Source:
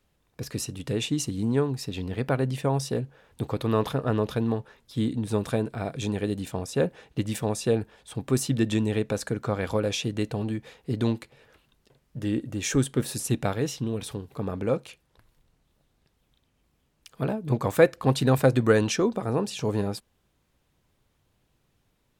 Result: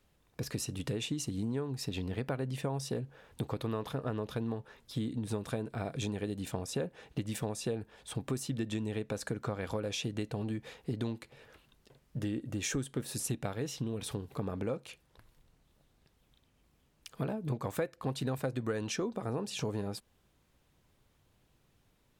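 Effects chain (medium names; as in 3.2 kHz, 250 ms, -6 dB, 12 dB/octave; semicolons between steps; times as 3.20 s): compression 6:1, threshold -32 dBFS, peak gain reduction 18.5 dB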